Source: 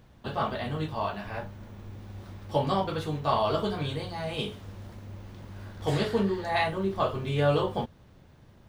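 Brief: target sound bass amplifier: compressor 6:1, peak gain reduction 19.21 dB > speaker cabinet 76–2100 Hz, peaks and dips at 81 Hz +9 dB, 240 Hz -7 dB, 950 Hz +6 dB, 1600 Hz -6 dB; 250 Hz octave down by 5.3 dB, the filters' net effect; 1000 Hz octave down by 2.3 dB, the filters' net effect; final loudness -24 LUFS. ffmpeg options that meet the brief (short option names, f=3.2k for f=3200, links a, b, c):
-af "equalizer=f=250:t=o:g=-6,equalizer=f=1k:t=o:g=-5.5,acompressor=threshold=-42dB:ratio=6,highpass=f=76:w=0.5412,highpass=f=76:w=1.3066,equalizer=f=81:t=q:w=4:g=9,equalizer=f=240:t=q:w=4:g=-7,equalizer=f=950:t=q:w=4:g=6,equalizer=f=1.6k:t=q:w=4:g=-6,lowpass=f=2.1k:w=0.5412,lowpass=f=2.1k:w=1.3066,volume=21.5dB"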